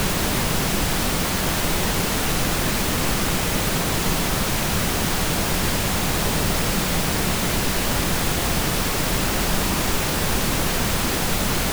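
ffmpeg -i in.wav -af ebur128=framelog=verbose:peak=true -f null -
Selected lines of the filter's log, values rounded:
Integrated loudness:
  I:         -21.3 LUFS
  Threshold: -31.2 LUFS
Loudness range:
  LRA:         0.1 LU
  Threshold: -41.2 LUFS
  LRA low:   -21.3 LUFS
  LRA high:  -21.2 LUFS
True peak:
  Peak:       -6.7 dBFS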